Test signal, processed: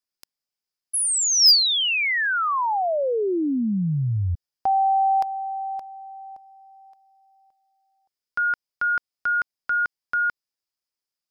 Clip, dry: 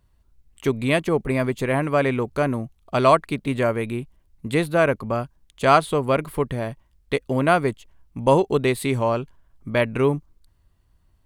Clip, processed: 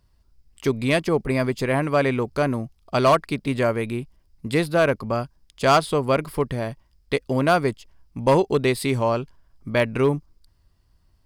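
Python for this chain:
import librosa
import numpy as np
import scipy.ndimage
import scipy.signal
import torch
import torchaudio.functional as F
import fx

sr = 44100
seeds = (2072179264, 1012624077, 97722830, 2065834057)

y = fx.peak_eq(x, sr, hz=5000.0, db=13.0, octaves=0.26)
y = np.clip(y, -10.0 ** (-10.0 / 20.0), 10.0 ** (-10.0 / 20.0))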